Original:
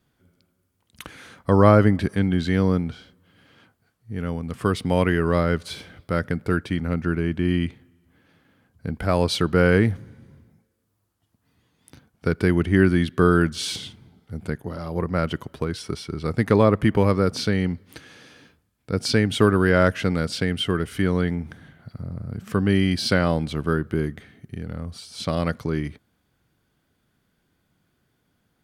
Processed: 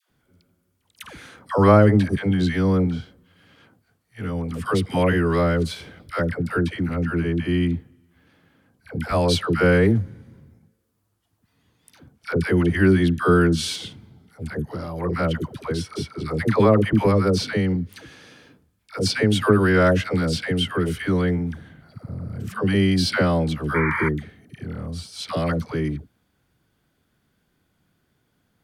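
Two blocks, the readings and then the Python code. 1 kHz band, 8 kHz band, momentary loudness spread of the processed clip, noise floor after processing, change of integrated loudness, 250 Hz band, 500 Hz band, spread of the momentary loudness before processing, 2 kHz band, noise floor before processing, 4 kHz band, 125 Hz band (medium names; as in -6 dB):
+1.0 dB, +1.0 dB, 16 LU, -70 dBFS, +1.0 dB, +1.0 dB, +1.0 dB, 16 LU, +1.5 dB, -71 dBFS, +1.0 dB, +1.0 dB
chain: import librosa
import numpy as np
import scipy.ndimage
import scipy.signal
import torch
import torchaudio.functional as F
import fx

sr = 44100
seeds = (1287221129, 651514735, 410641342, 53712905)

y = fx.dispersion(x, sr, late='lows', ms=101.0, hz=650.0)
y = fx.spec_paint(y, sr, seeds[0], shape='noise', start_s=23.74, length_s=0.35, low_hz=850.0, high_hz=2400.0, level_db=-26.0)
y = y * librosa.db_to_amplitude(1.0)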